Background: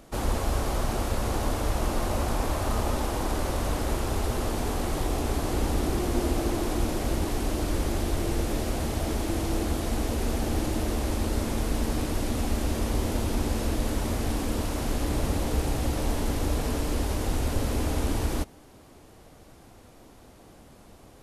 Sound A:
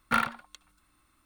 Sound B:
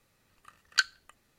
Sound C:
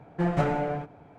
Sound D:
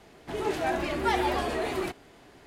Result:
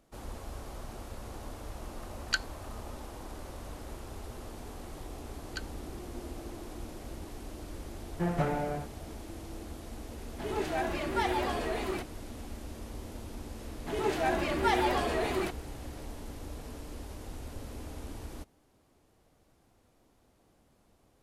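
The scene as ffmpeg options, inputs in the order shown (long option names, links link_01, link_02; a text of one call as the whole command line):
ffmpeg -i bed.wav -i cue0.wav -i cue1.wav -i cue2.wav -i cue3.wav -filter_complex "[2:a]asplit=2[link_01][link_02];[4:a]asplit=2[link_03][link_04];[0:a]volume=-15.5dB[link_05];[link_01]atrim=end=1.38,asetpts=PTS-STARTPTS,volume=-5dB,afade=type=in:duration=0.004:curve=hsin,afade=type=out:start_time=1.376:duration=0.004:curve=hsin,adelay=1550[link_06];[link_02]atrim=end=1.38,asetpts=PTS-STARTPTS,volume=-16.5dB,afade=type=in:duration=0.004:curve=hsin,afade=type=out:start_time=1.376:duration=0.004:curve=hsin,adelay=4780[link_07];[3:a]atrim=end=1.18,asetpts=PTS-STARTPTS,volume=-5dB,afade=type=in:duration=0.004:curve=hsin,afade=type=out:start_time=1.176:duration=0.004:curve=hsin,adelay=8010[link_08];[link_03]atrim=end=2.46,asetpts=PTS-STARTPTS,volume=-4dB,afade=type=in:duration=0.004:curve=hsin,afade=type=out:start_time=2.456:duration=0.004:curve=hsin,adelay=10110[link_09];[link_04]atrim=end=2.46,asetpts=PTS-STARTPTS,volume=-1dB,afade=type=in:duration=0.004:curve=hsin,afade=type=out:start_time=2.456:duration=0.004:curve=hsin,adelay=13590[link_10];[link_05][link_06][link_07][link_08][link_09][link_10]amix=inputs=6:normalize=0" out.wav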